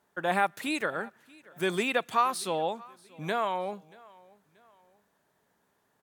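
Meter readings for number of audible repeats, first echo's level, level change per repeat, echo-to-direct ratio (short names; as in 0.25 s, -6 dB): 2, -24.0 dB, -8.0 dB, -23.5 dB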